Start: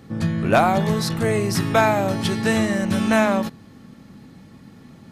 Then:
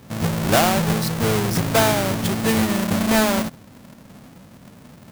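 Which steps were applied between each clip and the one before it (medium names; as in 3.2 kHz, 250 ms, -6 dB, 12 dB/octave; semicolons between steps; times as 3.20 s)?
square wave that keeps the level; treble shelf 7.8 kHz +5.5 dB; trim -4.5 dB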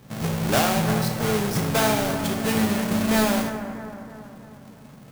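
bucket-brigade echo 321 ms, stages 4096, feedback 51%, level -10 dB; two-slope reverb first 0.63 s, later 2.2 s, from -18 dB, DRR 4 dB; trim -5 dB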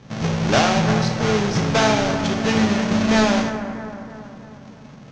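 elliptic low-pass 6.3 kHz, stop band 80 dB; trim +5 dB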